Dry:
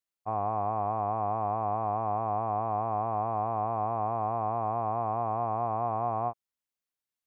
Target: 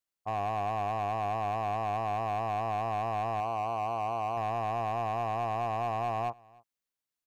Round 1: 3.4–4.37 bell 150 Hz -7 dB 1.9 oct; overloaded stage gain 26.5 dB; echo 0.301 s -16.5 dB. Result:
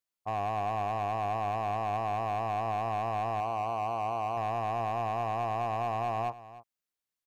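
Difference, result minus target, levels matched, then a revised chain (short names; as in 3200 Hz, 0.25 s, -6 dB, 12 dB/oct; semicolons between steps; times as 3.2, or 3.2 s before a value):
echo-to-direct +9 dB
3.4–4.37 bell 150 Hz -7 dB 1.9 oct; overloaded stage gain 26.5 dB; echo 0.301 s -25.5 dB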